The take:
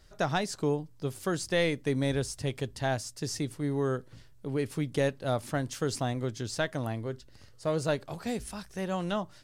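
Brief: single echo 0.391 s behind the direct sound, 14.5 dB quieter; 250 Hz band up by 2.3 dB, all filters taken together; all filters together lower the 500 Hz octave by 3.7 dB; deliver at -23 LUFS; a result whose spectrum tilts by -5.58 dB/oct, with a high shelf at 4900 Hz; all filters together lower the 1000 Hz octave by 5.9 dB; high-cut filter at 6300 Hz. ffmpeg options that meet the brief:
-af "lowpass=6.3k,equalizer=f=250:t=o:g=4.5,equalizer=f=500:t=o:g=-4,equalizer=f=1k:t=o:g=-7.5,highshelf=f=4.9k:g=5,aecho=1:1:391:0.188,volume=9.5dB"

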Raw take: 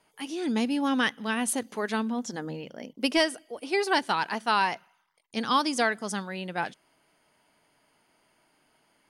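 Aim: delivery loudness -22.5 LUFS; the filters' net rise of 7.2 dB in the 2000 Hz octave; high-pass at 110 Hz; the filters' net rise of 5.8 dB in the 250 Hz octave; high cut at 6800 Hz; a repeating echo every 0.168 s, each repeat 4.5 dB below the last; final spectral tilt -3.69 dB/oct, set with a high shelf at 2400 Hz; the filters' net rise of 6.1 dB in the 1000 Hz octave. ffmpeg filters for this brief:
-af "highpass=110,lowpass=6.8k,equalizer=f=250:t=o:g=6.5,equalizer=f=1k:t=o:g=5,equalizer=f=2k:t=o:g=6,highshelf=f=2.4k:g=3,aecho=1:1:168|336|504|672|840|1008|1176|1344|1512:0.596|0.357|0.214|0.129|0.0772|0.0463|0.0278|0.0167|0.01,volume=-1.5dB"

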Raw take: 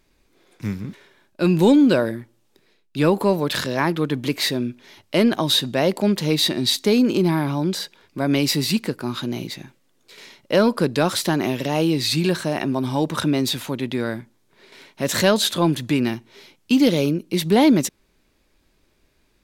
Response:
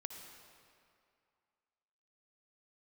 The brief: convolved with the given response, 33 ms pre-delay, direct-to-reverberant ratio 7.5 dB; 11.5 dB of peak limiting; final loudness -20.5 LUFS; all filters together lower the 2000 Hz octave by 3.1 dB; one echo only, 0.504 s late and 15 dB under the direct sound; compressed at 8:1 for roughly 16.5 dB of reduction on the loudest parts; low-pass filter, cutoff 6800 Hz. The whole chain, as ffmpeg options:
-filter_complex "[0:a]lowpass=6.8k,equalizer=f=2k:t=o:g=-4,acompressor=threshold=-29dB:ratio=8,alimiter=level_in=2.5dB:limit=-24dB:level=0:latency=1,volume=-2.5dB,aecho=1:1:504:0.178,asplit=2[a][b];[1:a]atrim=start_sample=2205,adelay=33[c];[b][c]afir=irnorm=-1:irlink=0,volume=-4.5dB[d];[a][d]amix=inputs=2:normalize=0,volume=15dB"

